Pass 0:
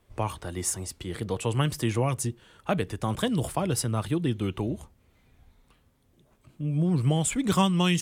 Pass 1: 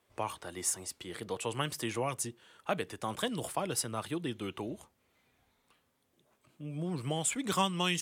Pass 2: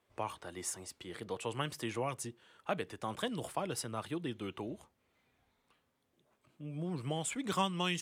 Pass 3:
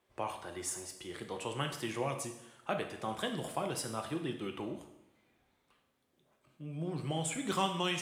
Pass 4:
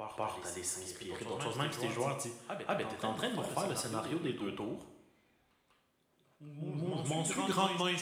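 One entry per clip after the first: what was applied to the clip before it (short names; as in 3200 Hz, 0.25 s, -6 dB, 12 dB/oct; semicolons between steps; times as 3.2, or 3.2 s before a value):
HPF 480 Hz 6 dB/oct; gain -3 dB
high shelf 5800 Hz -7 dB; gain -2.5 dB
two-slope reverb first 0.82 s, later 2.4 s, from -24 dB, DRR 4 dB
reverse echo 0.195 s -7 dB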